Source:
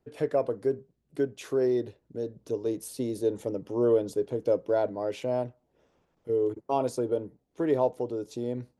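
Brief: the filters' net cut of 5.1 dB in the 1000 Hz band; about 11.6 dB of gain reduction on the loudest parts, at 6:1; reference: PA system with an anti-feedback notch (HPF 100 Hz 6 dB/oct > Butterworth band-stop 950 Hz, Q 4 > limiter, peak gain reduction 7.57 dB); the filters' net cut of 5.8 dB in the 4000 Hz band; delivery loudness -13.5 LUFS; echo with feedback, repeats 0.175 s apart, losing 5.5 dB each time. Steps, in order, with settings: bell 1000 Hz -5 dB; bell 4000 Hz -7.5 dB; compressor 6:1, threshold -33 dBFS; HPF 100 Hz 6 dB/oct; Butterworth band-stop 950 Hz, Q 4; feedback echo 0.175 s, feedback 53%, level -5.5 dB; gain +26.5 dB; limiter -3 dBFS

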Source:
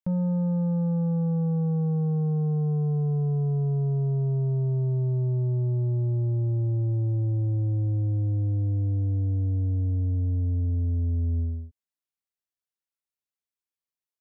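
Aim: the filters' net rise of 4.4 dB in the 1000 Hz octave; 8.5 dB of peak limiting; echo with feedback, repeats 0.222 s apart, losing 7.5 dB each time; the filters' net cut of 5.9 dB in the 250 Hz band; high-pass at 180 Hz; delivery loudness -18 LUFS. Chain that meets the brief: HPF 180 Hz; bell 250 Hz -5.5 dB; bell 1000 Hz +6.5 dB; limiter -31.5 dBFS; feedback echo 0.222 s, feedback 42%, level -7.5 dB; gain +20 dB

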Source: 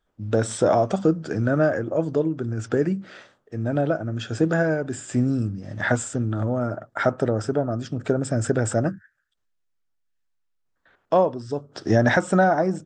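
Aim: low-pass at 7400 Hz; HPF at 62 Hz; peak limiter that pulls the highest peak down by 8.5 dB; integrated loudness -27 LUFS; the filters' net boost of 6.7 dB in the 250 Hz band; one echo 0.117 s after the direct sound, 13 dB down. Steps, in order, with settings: HPF 62 Hz; LPF 7400 Hz; bell 250 Hz +8.5 dB; limiter -11.5 dBFS; echo 0.117 s -13 dB; gain -4.5 dB

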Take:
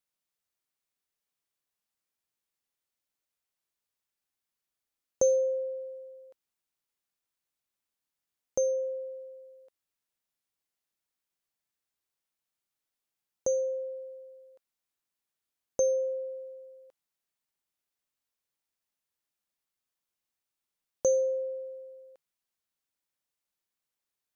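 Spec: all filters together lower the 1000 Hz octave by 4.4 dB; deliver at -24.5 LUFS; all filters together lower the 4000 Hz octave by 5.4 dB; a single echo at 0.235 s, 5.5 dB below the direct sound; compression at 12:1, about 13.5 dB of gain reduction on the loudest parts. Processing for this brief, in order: bell 1000 Hz -6.5 dB; bell 4000 Hz -8.5 dB; compressor 12:1, threshold -36 dBFS; echo 0.235 s -5.5 dB; gain +18.5 dB

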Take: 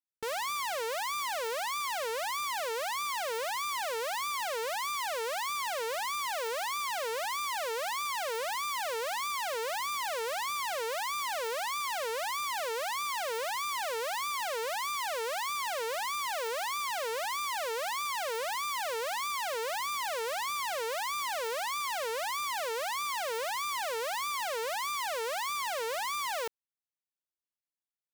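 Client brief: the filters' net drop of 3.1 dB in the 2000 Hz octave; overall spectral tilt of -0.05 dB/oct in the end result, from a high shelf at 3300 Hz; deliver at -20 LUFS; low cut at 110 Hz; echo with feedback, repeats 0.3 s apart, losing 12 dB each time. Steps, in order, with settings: HPF 110 Hz; bell 2000 Hz -6 dB; high shelf 3300 Hz +6.5 dB; feedback echo 0.3 s, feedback 25%, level -12 dB; gain +11.5 dB

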